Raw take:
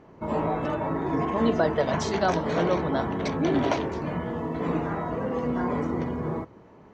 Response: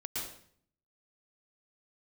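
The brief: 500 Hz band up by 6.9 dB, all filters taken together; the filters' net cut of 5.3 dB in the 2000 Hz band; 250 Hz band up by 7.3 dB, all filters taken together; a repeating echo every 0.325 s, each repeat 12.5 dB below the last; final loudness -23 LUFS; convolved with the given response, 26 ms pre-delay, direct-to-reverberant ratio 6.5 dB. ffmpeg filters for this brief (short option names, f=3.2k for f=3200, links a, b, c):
-filter_complex "[0:a]equalizer=f=250:t=o:g=7,equalizer=f=500:t=o:g=7,equalizer=f=2k:t=o:g=-8,aecho=1:1:325|650|975:0.237|0.0569|0.0137,asplit=2[a][b];[1:a]atrim=start_sample=2205,adelay=26[c];[b][c]afir=irnorm=-1:irlink=0,volume=-8.5dB[d];[a][d]amix=inputs=2:normalize=0,volume=-3dB"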